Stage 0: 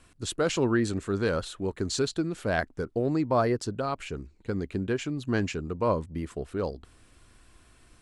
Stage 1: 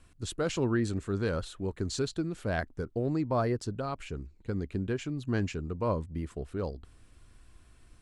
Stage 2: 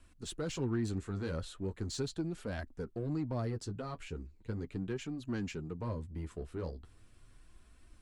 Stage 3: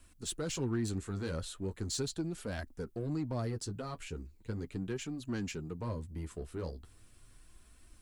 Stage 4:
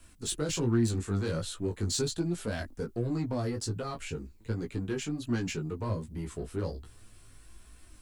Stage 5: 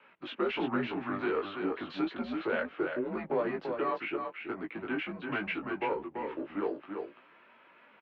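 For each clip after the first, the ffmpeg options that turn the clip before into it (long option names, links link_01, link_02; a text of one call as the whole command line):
ffmpeg -i in.wav -af "lowshelf=frequency=150:gain=8.5,volume=-5.5dB" out.wav
ffmpeg -i in.wav -filter_complex "[0:a]acrossover=split=320|3000[link_01][link_02][link_03];[link_02]acompressor=threshold=-34dB:ratio=6[link_04];[link_01][link_04][link_03]amix=inputs=3:normalize=0,asplit=2[link_05][link_06];[link_06]asoftclip=type=tanh:threshold=-35.5dB,volume=-3.5dB[link_07];[link_05][link_07]amix=inputs=2:normalize=0,flanger=delay=3:depth=9.8:regen=-26:speed=0.38:shape=triangular,volume=-4dB" out.wav
ffmpeg -i in.wav -af "crystalizer=i=1.5:c=0" out.wav
ffmpeg -i in.wav -filter_complex "[0:a]flanger=delay=17:depth=3.3:speed=1.3,acrossover=split=390|3000[link_01][link_02][link_03];[link_02]acompressor=threshold=-42dB:ratio=6[link_04];[link_01][link_04][link_03]amix=inputs=3:normalize=0,volume=8.5dB" out.wav
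ffmpeg -i in.wav -af "aecho=1:1:336:0.531,highpass=frequency=460:width_type=q:width=0.5412,highpass=frequency=460:width_type=q:width=1.307,lowpass=frequency=2800:width_type=q:width=0.5176,lowpass=frequency=2800:width_type=q:width=0.7071,lowpass=frequency=2800:width_type=q:width=1.932,afreqshift=-100,volume=7dB" out.wav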